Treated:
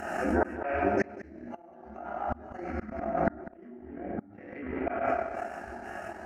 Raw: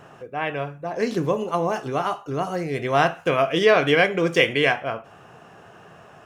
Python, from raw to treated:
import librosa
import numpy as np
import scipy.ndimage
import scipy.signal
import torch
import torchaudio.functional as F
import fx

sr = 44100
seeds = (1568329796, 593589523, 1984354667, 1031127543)

y = fx.pitch_trill(x, sr, semitones=-9.5, every_ms=243)
y = fx.low_shelf(y, sr, hz=110.0, db=-3.0)
y = fx.fixed_phaser(y, sr, hz=700.0, stages=8)
y = fx.env_lowpass_down(y, sr, base_hz=340.0, full_db=-18.0)
y = fx.rev_fdn(y, sr, rt60_s=1.6, lf_ratio=0.7, hf_ratio=0.85, size_ms=84.0, drr_db=-7.0)
y = fx.rider(y, sr, range_db=3, speed_s=2.0)
y = fx.gate_flip(y, sr, shuts_db=-15.0, range_db=-31)
y = fx.peak_eq(y, sr, hz=930.0, db=2.0, octaves=0.77)
y = fx.notch(y, sr, hz=1200.0, q=24.0)
y = y + 10.0 ** (-14.5 / 20.0) * np.pad(y, (int(198 * sr / 1000.0), 0))[:len(y)]
y = fx.transient(y, sr, attack_db=3, sustain_db=-10)
y = fx.pre_swell(y, sr, db_per_s=40.0)
y = y * 10.0 ** (-1.0 / 20.0)